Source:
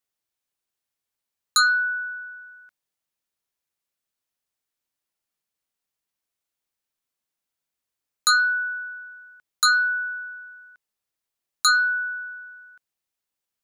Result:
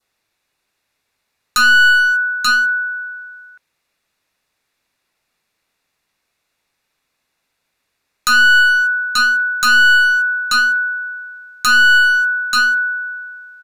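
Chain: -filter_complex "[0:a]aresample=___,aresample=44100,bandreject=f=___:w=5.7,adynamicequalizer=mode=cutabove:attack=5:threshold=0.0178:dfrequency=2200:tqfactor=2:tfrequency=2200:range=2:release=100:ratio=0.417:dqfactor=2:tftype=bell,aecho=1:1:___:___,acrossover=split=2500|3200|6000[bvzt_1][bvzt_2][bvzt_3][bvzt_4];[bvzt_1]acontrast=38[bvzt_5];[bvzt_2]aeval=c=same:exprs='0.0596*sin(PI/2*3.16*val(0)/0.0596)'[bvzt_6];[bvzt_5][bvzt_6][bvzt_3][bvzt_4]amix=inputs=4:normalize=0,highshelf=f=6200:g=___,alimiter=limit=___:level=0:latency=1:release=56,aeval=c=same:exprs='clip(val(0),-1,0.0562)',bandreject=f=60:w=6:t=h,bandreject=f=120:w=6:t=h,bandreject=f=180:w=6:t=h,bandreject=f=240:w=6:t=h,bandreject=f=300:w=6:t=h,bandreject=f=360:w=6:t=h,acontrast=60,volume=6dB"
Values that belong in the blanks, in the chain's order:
32000, 3100, 884, 0.266, -4, -16dB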